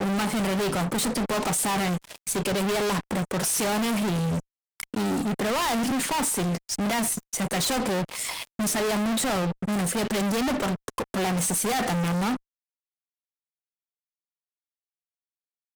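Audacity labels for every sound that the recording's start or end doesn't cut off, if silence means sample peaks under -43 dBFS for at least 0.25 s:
4.800000	12.370000	sound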